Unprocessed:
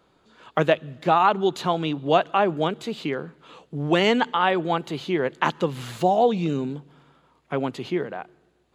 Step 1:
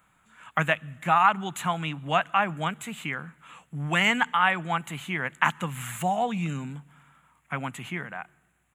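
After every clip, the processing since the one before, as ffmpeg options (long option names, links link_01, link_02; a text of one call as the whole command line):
ffmpeg -i in.wav -af "firequalizer=gain_entry='entry(180,0);entry(390,-17);entry(730,-3);entry(1300,4);entry(2200,7);entry(4700,-15);entry(7400,11)':delay=0.05:min_phase=1,volume=-2dB" out.wav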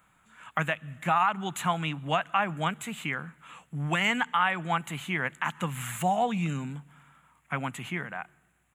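ffmpeg -i in.wav -af "alimiter=limit=-14dB:level=0:latency=1:release=192" out.wav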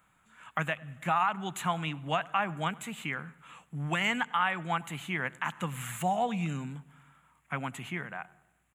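ffmpeg -i in.wav -filter_complex "[0:a]asplit=2[link_01][link_02];[link_02]adelay=99,lowpass=frequency=1800:poles=1,volume=-21dB,asplit=2[link_03][link_04];[link_04]adelay=99,lowpass=frequency=1800:poles=1,volume=0.53,asplit=2[link_05][link_06];[link_06]adelay=99,lowpass=frequency=1800:poles=1,volume=0.53,asplit=2[link_07][link_08];[link_08]adelay=99,lowpass=frequency=1800:poles=1,volume=0.53[link_09];[link_01][link_03][link_05][link_07][link_09]amix=inputs=5:normalize=0,volume=-3dB" out.wav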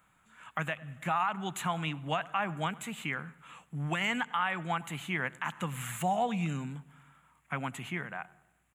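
ffmpeg -i in.wav -af "alimiter=limit=-20dB:level=0:latency=1:release=71" out.wav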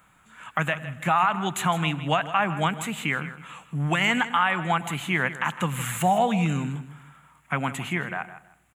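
ffmpeg -i in.wav -af "aecho=1:1:159|318:0.2|0.0439,volume=8.5dB" out.wav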